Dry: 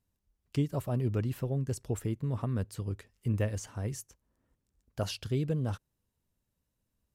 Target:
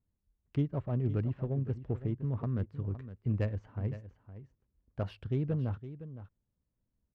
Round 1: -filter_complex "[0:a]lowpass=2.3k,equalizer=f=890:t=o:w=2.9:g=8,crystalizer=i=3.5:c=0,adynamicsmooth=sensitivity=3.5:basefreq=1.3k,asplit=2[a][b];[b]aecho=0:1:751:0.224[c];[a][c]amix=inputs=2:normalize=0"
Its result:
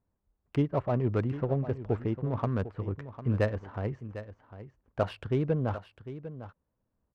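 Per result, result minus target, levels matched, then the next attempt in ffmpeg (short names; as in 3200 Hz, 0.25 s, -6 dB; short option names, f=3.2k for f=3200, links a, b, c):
echo 0.238 s late; 1000 Hz band +9.0 dB
-filter_complex "[0:a]lowpass=2.3k,equalizer=f=890:t=o:w=2.9:g=8,crystalizer=i=3.5:c=0,adynamicsmooth=sensitivity=3.5:basefreq=1.3k,asplit=2[a][b];[b]aecho=0:1:513:0.224[c];[a][c]amix=inputs=2:normalize=0"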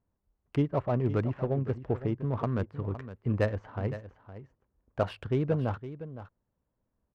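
1000 Hz band +8.5 dB
-filter_complex "[0:a]lowpass=2.3k,equalizer=f=890:t=o:w=2.9:g=-4,crystalizer=i=3.5:c=0,adynamicsmooth=sensitivity=3.5:basefreq=1.3k,asplit=2[a][b];[b]aecho=0:1:513:0.224[c];[a][c]amix=inputs=2:normalize=0"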